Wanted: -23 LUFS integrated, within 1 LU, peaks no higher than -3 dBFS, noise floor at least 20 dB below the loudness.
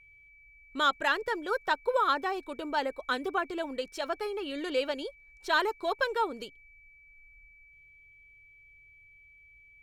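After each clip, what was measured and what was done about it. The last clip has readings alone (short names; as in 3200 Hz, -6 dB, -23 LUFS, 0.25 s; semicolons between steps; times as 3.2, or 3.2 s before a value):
steady tone 2300 Hz; tone level -55 dBFS; loudness -31.0 LUFS; peak -13.5 dBFS; loudness target -23.0 LUFS
-> notch 2300 Hz, Q 30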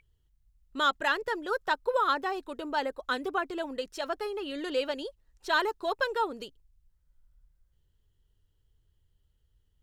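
steady tone none; loudness -31.0 LUFS; peak -14.0 dBFS; loudness target -23.0 LUFS
-> gain +8 dB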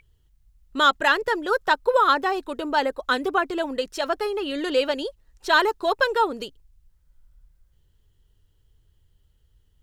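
loudness -23.0 LUFS; peak -6.0 dBFS; noise floor -64 dBFS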